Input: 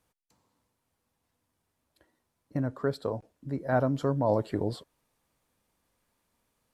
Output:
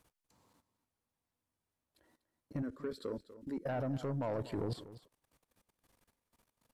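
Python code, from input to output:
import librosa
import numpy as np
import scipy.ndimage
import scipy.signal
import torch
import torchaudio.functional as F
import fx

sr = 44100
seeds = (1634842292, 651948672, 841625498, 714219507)

y = fx.level_steps(x, sr, step_db=19)
y = fx.fixed_phaser(y, sr, hz=310.0, stages=4, at=(2.62, 3.65))
y = 10.0 ** (-34.5 / 20.0) * np.tanh(y / 10.0 ** (-34.5 / 20.0))
y = y + 10.0 ** (-15.5 / 20.0) * np.pad(y, (int(244 * sr / 1000.0), 0))[:len(y)]
y = y * librosa.db_to_amplitude(5.0)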